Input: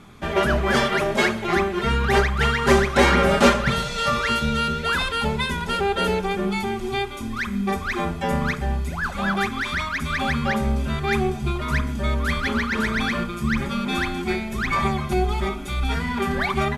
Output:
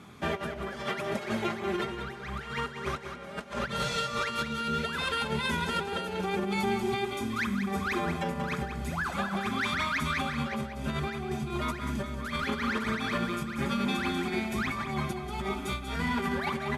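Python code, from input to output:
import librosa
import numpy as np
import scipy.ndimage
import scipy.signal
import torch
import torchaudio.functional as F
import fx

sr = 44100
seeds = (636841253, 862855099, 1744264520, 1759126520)

y = fx.over_compress(x, sr, threshold_db=-25.0, ratio=-0.5)
y = scipy.signal.sosfilt(scipy.signal.butter(2, 90.0, 'highpass', fs=sr, output='sos'), y)
y = fx.echo_feedback(y, sr, ms=188, feedback_pct=32, wet_db=-8.5)
y = y * 10.0 ** (-6.0 / 20.0)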